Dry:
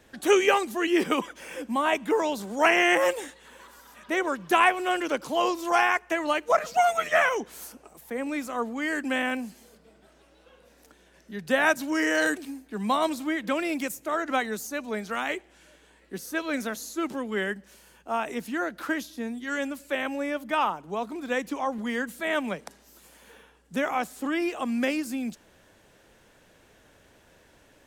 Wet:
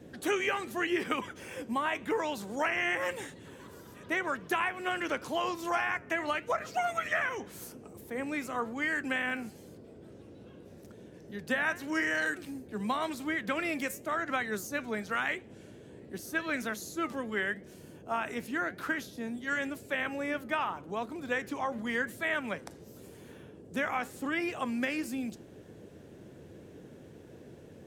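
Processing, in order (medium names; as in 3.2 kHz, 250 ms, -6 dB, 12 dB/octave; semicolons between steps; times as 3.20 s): dynamic bell 1.8 kHz, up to +8 dB, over -39 dBFS, Q 0.97; compression 6:1, threshold -23 dBFS, peak gain reduction 13 dB; flange 0.9 Hz, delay 3.7 ms, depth 5.9 ms, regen +85%; band noise 79–490 Hz -51 dBFS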